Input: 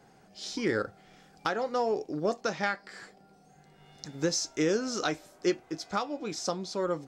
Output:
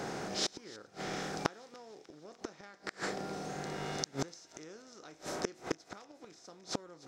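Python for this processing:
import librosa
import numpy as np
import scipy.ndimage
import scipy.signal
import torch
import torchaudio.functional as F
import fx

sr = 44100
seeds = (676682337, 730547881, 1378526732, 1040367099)

y = fx.bin_compress(x, sr, power=0.6)
y = fx.gate_flip(y, sr, shuts_db=-22.0, range_db=-29)
y = fx.echo_wet_highpass(y, sr, ms=297, feedback_pct=66, hz=2100.0, wet_db=-19.5)
y = F.gain(torch.from_numpy(y), 3.0).numpy()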